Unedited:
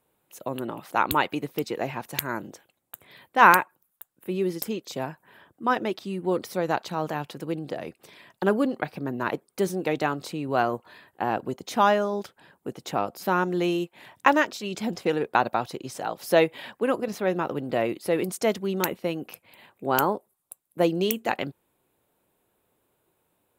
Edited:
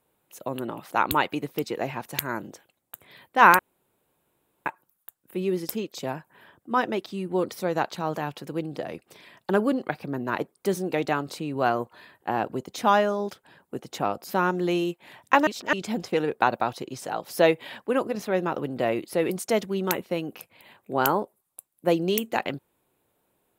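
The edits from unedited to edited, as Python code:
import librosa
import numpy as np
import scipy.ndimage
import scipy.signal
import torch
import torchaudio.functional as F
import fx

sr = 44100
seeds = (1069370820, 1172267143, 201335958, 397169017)

y = fx.edit(x, sr, fx.insert_room_tone(at_s=3.59, length_s=1.07),
    fx.reverse_span(start_s=14.4, length_s=0.26), tone=tone)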